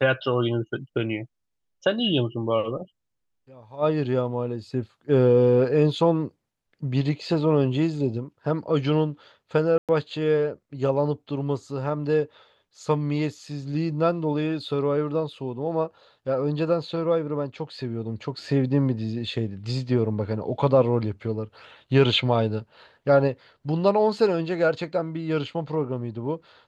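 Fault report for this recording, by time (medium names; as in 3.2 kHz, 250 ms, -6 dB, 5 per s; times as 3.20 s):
9.78–9.89 s: dropout 107 ms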